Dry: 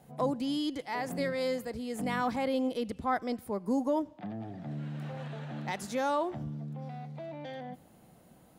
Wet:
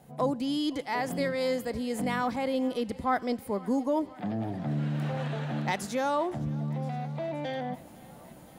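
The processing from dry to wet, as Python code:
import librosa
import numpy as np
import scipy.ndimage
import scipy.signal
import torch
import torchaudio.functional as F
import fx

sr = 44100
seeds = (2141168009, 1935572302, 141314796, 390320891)

p1 = fx.rider(x, sr, range_db=4, speed_s=0.5)
p2 = p1 + fx.echo_thinned(p1, sr, ms=514, feedback_pct=76, hz=170.0, wet_db=-22.5, dry=0)
y = p2 * 10.0 ** (4.0 / 20.0)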